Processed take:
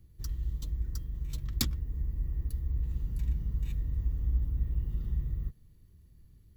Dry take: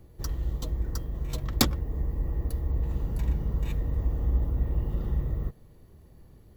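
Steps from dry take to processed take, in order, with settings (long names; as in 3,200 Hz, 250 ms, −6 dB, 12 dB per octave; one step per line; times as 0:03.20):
guitar amp tone stack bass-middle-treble 6-0-2
level +8.5 dB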